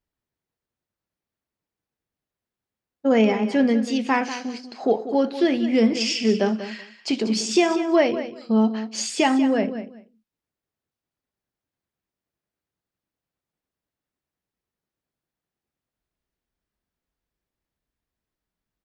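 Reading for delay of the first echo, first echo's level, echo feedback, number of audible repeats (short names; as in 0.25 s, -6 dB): 0.191 s, -12.0 dB, 17%, 2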